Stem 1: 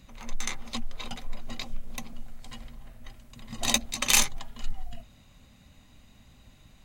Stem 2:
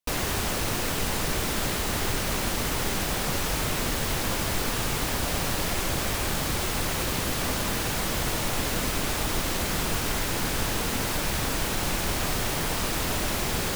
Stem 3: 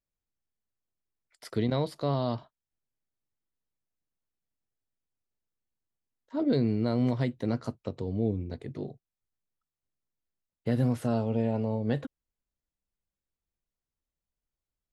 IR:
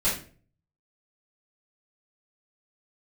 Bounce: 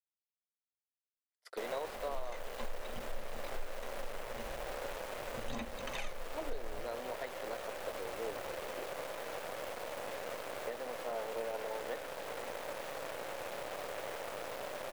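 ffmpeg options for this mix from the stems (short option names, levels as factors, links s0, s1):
-filter_complex "[0:a]aphaser=in_gain=1:out_gain=1:delay=2.2:decay=0.58:speed=0.79:type=sinusoidal,adelay=1850,volume=0.266[s0];[1:a]highpass=f=540:t=q:w=4.9,alimiter=level_in=1.19:limit=0.0631:level=0:latency=1:release=45,volume=0.841,acrusher=bits=6:dc=4:mix=0:aa=0.000001,adelay=1500,volume=0.473[s1];[2:a]agate=range=0.0316:threshold=0.00631:ratio=16:detection=peak,highpass=f=480:w=0.5412,highpass=f=480:w=1.3066,volume=0.668[s2];[s0][s1][s2]amix=inputs=3:normalize=0,acrossover=split=2900[s3][s4];[s4]acompressor=threshold=0.00355:ratio=4:attack=1:release=60[s5];[s3][s5]amix=inputs=2:normalize=0,alimiter=level_in=1.58:limit=0.0631:level=0:latency=1:release=440,volume=0.631"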